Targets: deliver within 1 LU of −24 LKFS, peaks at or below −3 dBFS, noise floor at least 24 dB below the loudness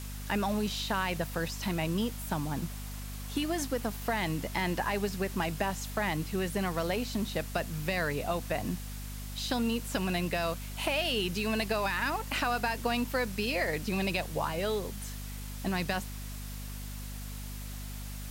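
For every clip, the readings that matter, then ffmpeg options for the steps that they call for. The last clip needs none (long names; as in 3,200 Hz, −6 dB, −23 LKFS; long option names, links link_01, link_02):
mains hum 50 Hz; hum harmonics up to 250 Hz; level of the hum −38 dBFS; background noise floor −40 dBFS; target noise floor −57 dBFS; integrated loudness −33.0 LKFS; sample peak −17.5 dBFS; target loudness −24.0 LKFS
→ -af "bandreject=frequency=50:width_type=h:width=6,bandreject=frequency=100:width_type=h:width=6,bandreject=frequency=150:width_type=h:width=6,bandreject=frequency=200:width_type=h:width=6,bandreject=frequency=250:width_type=h:width=6"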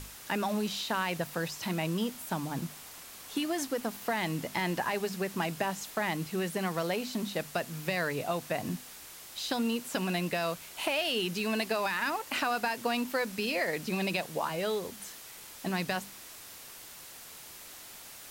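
mains hum none found; background noise floor −48 dBFS; target noise floor −57 dBFS
→ -af "afftdn=noise_reduction=9:noise_floor=-48"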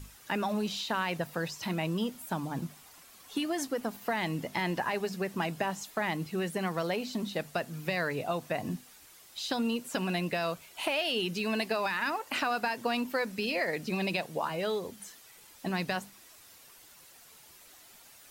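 background noise floor −56 dBFS; target noise floor −57 dBFS
→ -af "afftdn=noise_reduction=6:noise_floor=-56"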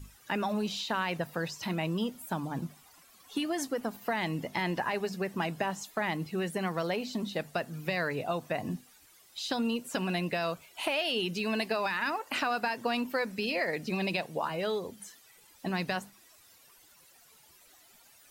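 background noise floor −60 dBFS; integrated loudness −33.0 LKFS; sample peak −17.5 dBFS; target loudness −24.0 LKFS
→ -af "volume=9dB"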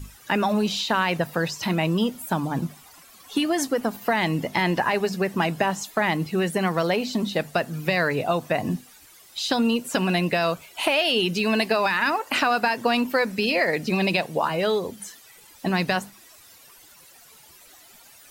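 integrated loudness −24.0 LKFS; sample peak −8.5 dBFS; background noise floor −51 dBFS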